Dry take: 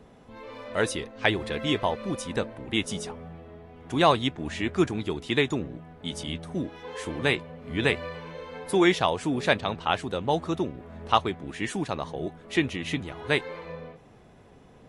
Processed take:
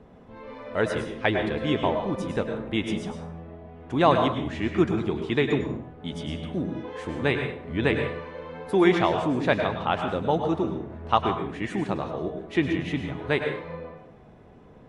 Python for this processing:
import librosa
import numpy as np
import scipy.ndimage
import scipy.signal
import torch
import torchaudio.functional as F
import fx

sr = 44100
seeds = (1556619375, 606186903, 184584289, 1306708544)

y = fx.lowpass(x, sr, hz=1700.0, slope=6)
y = fx.rev_plate(y, sr, seeds[0], rt60_s=0.57, hf_ratio=0.75, predelay_ms=90, drr_db=4.5)
y = F.gain(torch.from_numpy(y), 1.5).numpy()